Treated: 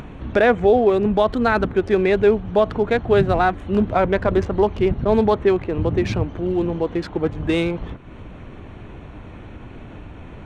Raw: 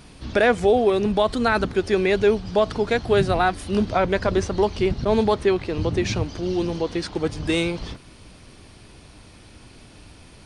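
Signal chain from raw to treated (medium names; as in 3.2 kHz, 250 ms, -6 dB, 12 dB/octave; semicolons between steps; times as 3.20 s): local Wiener filter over 9 samples; low-pass 2.4 kHz 6 dB/octave; upward compressor, threshold -31 dBFS; trim +3 dB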